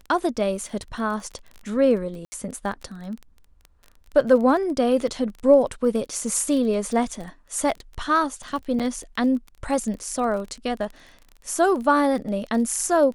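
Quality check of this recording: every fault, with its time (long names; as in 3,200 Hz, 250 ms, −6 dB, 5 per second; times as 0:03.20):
surface crackle 25 per second −31 dBFS
0:02.25–0:02.32: drop-out 70 ms
0:08.79–0:08.80: drop-out 7.3 ms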